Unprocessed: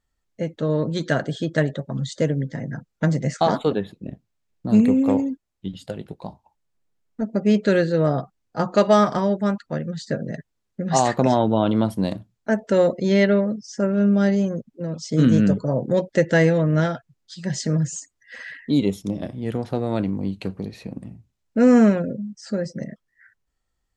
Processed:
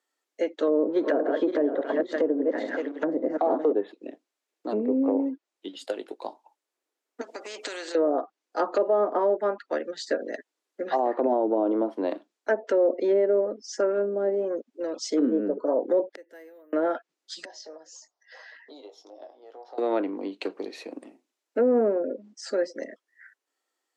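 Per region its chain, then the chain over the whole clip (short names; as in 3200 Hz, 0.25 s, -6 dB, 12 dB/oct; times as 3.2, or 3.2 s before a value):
0.67–3.72 regenerating reverse delay 0.281 s, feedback 50%, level -8 dB + low shelf 120 Hz +4.5 dB + sample leveller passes 1
7.21–7.95 HPF 240 Hz + compressor, threshold -29 dBFS + spectral compressor 2:1
16.13–16.73 flipped gate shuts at -20 dBFS, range -31 dB + bell 3600 Hz -4.5 dB 1.1 oct + careless resampling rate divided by 3×, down filtered, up hold
17.45–19.78 EQ curve 120 Hz 0 dB, 190 Hz -22 dB, 310 Hz -11 dB, 770 Hz +9 dB, 1300 Hz -3 dB, 2300 Hz -13 dB, 5400 Hz 0 dB, 9200 Hz -27 dB + compressor 3:1, threshold -48 dBFS + doubler 19 ms -7.5 dB
whole clip: treble ducked by the level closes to 570 Hz, closed at -14 dBFS; steep high-pass 290 Hz 48 dB/oct; limiter -16.5 dBFS; gain +2 dB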